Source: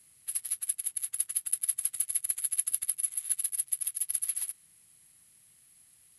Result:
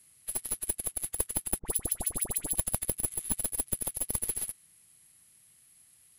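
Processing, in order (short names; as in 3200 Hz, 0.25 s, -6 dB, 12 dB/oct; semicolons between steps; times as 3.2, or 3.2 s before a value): tracing distortion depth 0.029 ms; 1.59–2.55 dispersion highs, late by 68 ms, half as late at 1800 Hz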